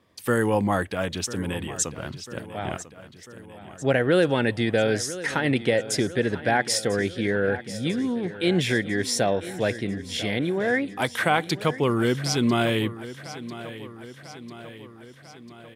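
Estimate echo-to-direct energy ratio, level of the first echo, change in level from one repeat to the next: −13.0 dB, −15.0 dB, −4.5 dB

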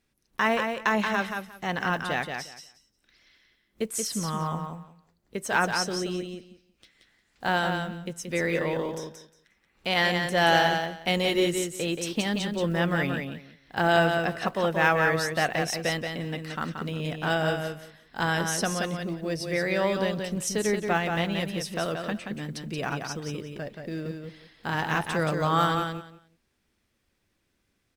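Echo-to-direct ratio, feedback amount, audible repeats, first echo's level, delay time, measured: −5.5 dB, 18%, 2, −5.5 dB, 178 ms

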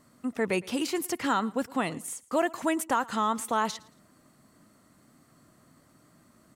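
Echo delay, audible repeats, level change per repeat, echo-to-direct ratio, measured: 113 ms, 2, −10.0 dB, −22.0 dB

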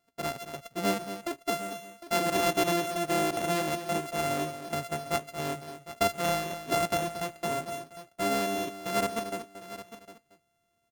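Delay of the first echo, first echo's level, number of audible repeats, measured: 229 ms, −11.0 dB, 3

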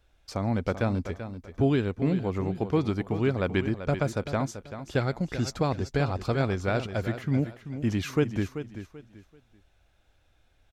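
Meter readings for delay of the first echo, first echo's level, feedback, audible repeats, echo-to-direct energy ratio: 386 ms, −11.0 dB, 28%, 3, −10.5 dB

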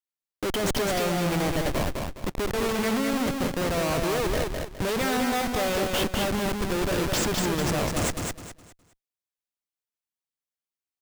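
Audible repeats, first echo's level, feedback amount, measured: 3, −4.0 dB, 30%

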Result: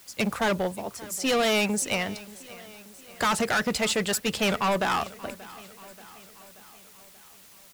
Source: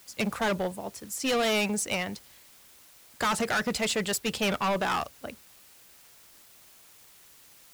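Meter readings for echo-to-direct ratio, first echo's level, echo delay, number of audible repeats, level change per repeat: −18.0 dB, −19.5 dB, 582 ms, 4, −5.0 dB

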